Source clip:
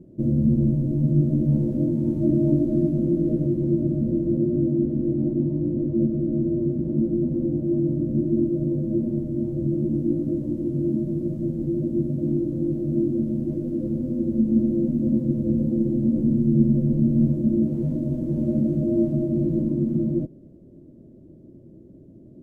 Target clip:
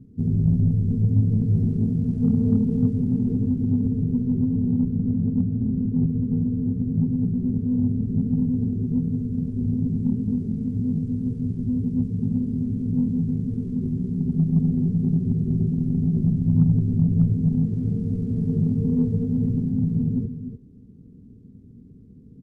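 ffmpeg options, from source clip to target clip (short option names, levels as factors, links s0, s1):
-af "aecho=1:1:298:0.335,asetrate=32097,aresample=44100,atempo=1.37395,aeval=exprs='0.447*(cos(1*acos(clip(val(0)/0.447,-1,1)))-cos(1*PI/2))+0.00501*(cos(8*acos(clip(val(0)/0.447,-1,1)))-cos(8*PI/2))':c=same"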